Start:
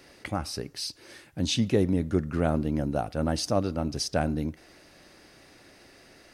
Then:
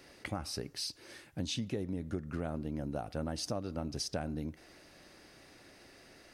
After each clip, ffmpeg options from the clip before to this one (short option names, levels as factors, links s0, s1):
-af "acompressor=threshold=0.0355:ratio=10,volume=0.668"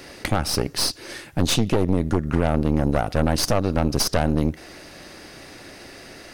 -af "aeval=exprs='0.0891*(cos(1*acos(clip(val(0)/0.0891,-1,1)))-cos(1*PI/2))+0.02*(cos(5*acos(clip(val(0)/0.0891,-1,1)))-cos(5*PI/2))+0.0355*(cos(6*acos(clip(val(0)/0.0891,-1,1)))-cos(6*PI/2))':c=same,volume=2.82"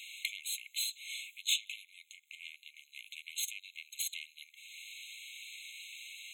-af "acompressor=threshold=0.0178:ratio=1.5,afftfilt=real='re*eq(mod(floor(b*sr/1024/2100),2),1)':imag='im*eq(mod(floor(b*sr/1024/2100),2),1)':win_size=1024:overlap=0.75,volume=1.19"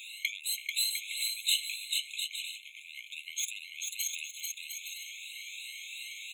-filter_complex "[0:a]afftfilt=real='re*pow(10,16/40*sin(2*PI*(2*log(max(b,1)*sr/1024/100)/log(2)-(2.9)*(pts-256)/sr)))':imag='im*pow(10,16/40*sin(2*PI*(2*log(max(b,1)*sr/1024/100)/log(2)-(2.9)*(pts-256)/sr)))':win_size=1024:overlap=0.75,asplit=2[s0][s1];[s1]aecho=0:1:440|704|862.4|957.4|1014:0.631|0.398|0.251|0.158|0.1[s2];[s0][s2]amix=inputs=2:normalize=0"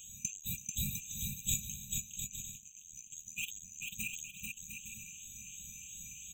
-af "afftfilt=real='real(if(lt(b,736),b+184*(1-2*mod(floor(b/184),2)),b),0)':imag='imag(if(lt(b,736),b+184*(1-2*mod(floor(b/184),2)),b),0)':win_size=2048:overlap=0.75,volume=0.562"